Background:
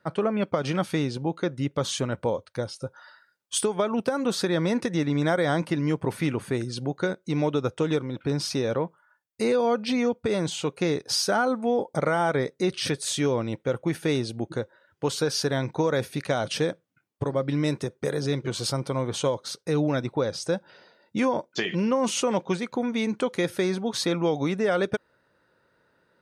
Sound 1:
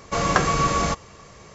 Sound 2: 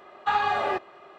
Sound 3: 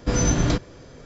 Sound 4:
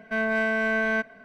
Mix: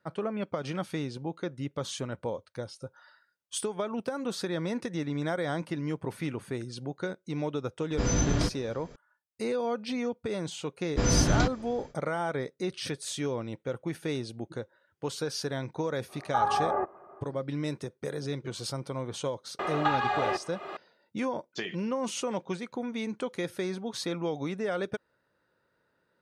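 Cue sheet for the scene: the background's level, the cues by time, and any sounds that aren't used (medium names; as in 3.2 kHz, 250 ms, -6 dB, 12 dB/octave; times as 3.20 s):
background -7.5 dB
7.91 s: add 3 -6 dB
10.90 s: add 3 -3.5 dB, fades 0.10 s
16.07 s: add 2 -1.5 dB, fades 0.05 s + low-pass 1.3 kHz 24 dB/octave
19.59 s: add 2 -3.5 dB + three bands compressed up and down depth 100%
not used: 1, 4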